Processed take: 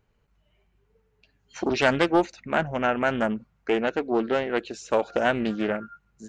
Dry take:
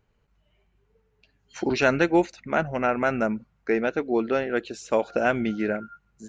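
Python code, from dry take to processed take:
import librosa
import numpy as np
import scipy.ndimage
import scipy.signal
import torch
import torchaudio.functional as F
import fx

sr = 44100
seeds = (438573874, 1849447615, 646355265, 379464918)

y = fx.doppler_dist(x, sr, depth_ms=0.3)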